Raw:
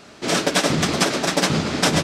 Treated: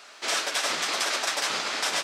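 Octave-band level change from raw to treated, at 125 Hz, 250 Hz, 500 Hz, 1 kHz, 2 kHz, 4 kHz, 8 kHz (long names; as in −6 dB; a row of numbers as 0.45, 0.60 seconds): −31.5, −23.0, −12.5, −6.0, −4.0, −4.0, −4.5 decibels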